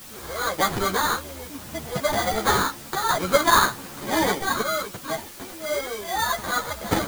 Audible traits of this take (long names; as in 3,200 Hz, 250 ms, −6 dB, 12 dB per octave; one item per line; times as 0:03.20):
aliases and images of a low sample rate 2,700 Hz, jitter 0%
sample-and-hold tremolo 1.3 Hz, depth 75%
a quantiser's noise floor 8 bits, dither triangular
a shimmering, thickened sound